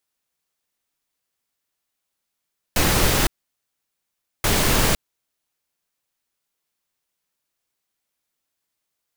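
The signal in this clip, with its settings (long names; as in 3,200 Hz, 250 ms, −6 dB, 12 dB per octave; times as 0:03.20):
noise bursts pink, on 0.51 s, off 1.17 s, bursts 2, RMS −18 dBFS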